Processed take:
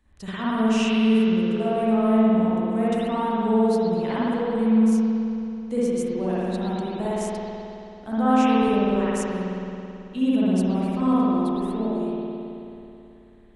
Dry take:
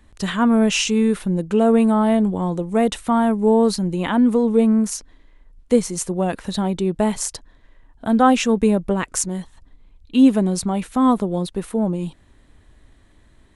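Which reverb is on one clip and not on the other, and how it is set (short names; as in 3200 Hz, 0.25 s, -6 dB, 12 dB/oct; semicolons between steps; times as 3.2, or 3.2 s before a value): spring tank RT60 2.9 s, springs 54 ms, chirp 75 ms, DRR -10 dB; gain -14.5 dB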